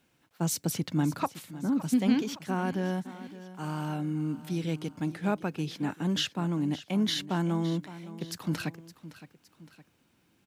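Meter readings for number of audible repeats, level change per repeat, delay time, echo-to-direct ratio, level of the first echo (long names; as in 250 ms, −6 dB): 2, −6.0 dB, 564 ms, −14.5 dB, −15.5 dB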